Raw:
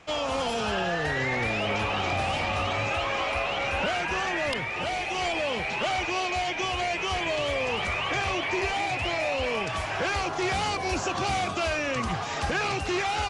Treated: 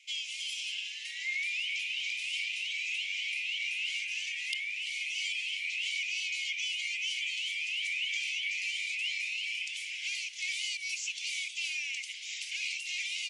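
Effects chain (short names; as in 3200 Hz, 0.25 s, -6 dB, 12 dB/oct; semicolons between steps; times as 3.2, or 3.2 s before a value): rippled Chebyshev high-pass 2100 Hz, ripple 3 dB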